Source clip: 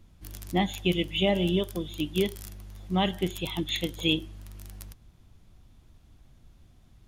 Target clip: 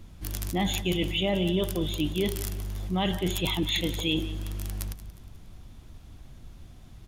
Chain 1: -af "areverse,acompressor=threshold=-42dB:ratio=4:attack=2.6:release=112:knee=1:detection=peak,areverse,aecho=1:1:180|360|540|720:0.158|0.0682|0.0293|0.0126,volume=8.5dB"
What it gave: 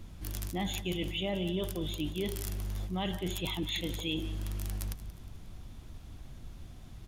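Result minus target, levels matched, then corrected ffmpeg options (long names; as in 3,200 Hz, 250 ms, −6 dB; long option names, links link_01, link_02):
downward compressor: peak gain reduction +7 dB
-af "areverse,acompressor=threshold=-32.5dB:ratio=4:attack=2.6:release=112:knee=1:detection=peak,areverse,aecho=1:1:180|360|540|720:0.158|0.0682|0.0293|0.0126,volume=8.5dB"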